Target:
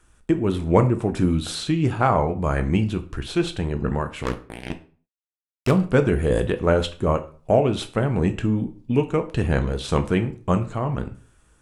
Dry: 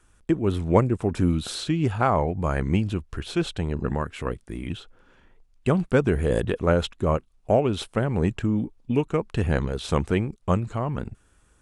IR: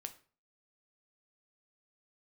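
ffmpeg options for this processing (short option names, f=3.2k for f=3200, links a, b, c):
-filter_complex "[0:a]asettb=1/sr,asplit=3[a][b][c];[a]atrim=end=4.234[d];[b]atrim=start=4.23:end=5.71,asetpts=PTS-STARTPTS,afade=t=in:d=0.004:c=qsin,afade=t=out:st=1.476:d=0.004:c=qsin,acrusher=bits=3:mix=0:aa=0.5[e];[c]atrim=start=5.706[f];[d][e]acrossfade=d=0.004:c1=hsin:c2=qsin[g];[g][f]acrossfade=d=0.004:c1=qsin:c2=hsin[h];[1:a]atrim=start_sample=2205[i];[h][i]afir=irnorm=-1:irlink=0,volume=6dB"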